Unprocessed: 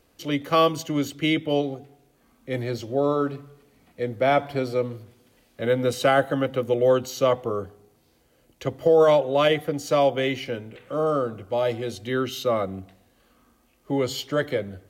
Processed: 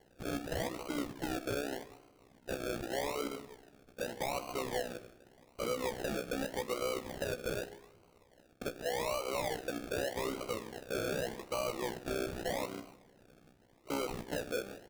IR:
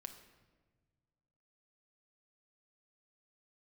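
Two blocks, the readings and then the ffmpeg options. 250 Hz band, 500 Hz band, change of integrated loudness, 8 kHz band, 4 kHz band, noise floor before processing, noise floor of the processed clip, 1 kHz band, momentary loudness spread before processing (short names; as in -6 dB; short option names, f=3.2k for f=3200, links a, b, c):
-13.0 dB, -15.0 dB, -14.0 dB, -4.5 dB, -11.0 dB, -63 dBFS, -65 dBFS, -14.0 dB, 12 LU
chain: -filter_complex "[0:a]highpass=370,acompressor=threshold=-21dB:ratio=6,tremolo=f=63:d=0.889,acrossover=split=1200|2900[a][b][c];[a]acompressor=threshold=-34dB:ratio=4[d];[b]acompressor=threshold=-51dB:ratio=4[e];[c]acompressor=threshold=-47dB:ratio=4[f];[d][e][f]amix=inputs=3:normalize=0,aresample=11025,asoftclip=type=tanh:threshold=-35.5dB,aresample=44100,acrusher=samples=35:mix=1:aa=0.000001:lfo=1:lforange=21:lforate=0.84,asplit=2[g][h];[1:a]atrim=start_sample=2205,adelay=18[i];[h][i]afir=irnorm=-1:irlink=0,volume=-6dB[j];[g][j]amix=inputs=2:normalize=0,volume=5dB"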